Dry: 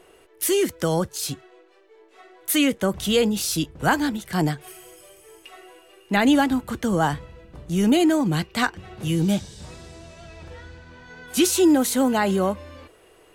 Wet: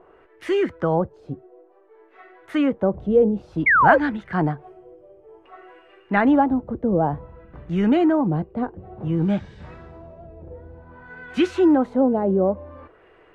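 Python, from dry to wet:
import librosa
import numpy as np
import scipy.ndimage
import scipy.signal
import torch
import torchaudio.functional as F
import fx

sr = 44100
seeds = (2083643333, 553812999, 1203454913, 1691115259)

y = fx.filter_lfo_lowpass(x, sr, shape='sine', hz=0.55, low_hz=520.0, high_hz=1900.0, q=1.6)
y = fx.spec_paint(y, sr, seeds[0], shape='fall', start_s=3.66, length_s=0.32, low_hz=490.0, high_hz=2300.0, level_db=-15.0)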